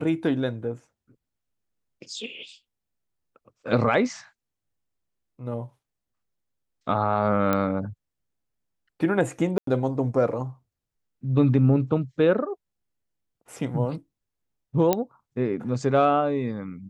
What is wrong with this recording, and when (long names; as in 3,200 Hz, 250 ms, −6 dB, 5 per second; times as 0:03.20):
0:07.53: click −10 dBFS
0:09.58–0:09.67: drop-out 93 ms
0:14.93: click −7 dBFS